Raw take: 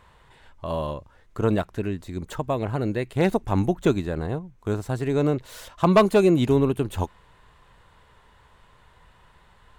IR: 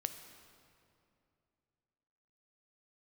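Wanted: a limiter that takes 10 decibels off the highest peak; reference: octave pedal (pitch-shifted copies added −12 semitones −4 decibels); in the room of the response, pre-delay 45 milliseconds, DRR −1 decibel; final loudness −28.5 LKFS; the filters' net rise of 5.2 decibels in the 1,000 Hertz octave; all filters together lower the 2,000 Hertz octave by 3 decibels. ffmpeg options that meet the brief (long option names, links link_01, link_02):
-filter_complex "[0:a]equalizer=frequency=1000:width_type=o:gain=8,equalizer=frequency=2000:width_type=o:gain=-7.5,alimiter=limit=-13dB:level=0:latency=1,asplit=2[link_01][link_02];[1:a]atrim=start_sample=2205,adelay=45[link_03];[link_02][link_03]afir=irnorm=-1:irlink=0,volume=1.5dB[link_04];[link_01][link_04]amix=inputs=2:normalize=0,asplit=2[link_05][link_06];[link_06]asetrate=22050,aresample=44100,atempo=2,volume=-4dB[link_07];[link_05][link_07]amix=inputs=2:normalize=0,volume=-7.5dB"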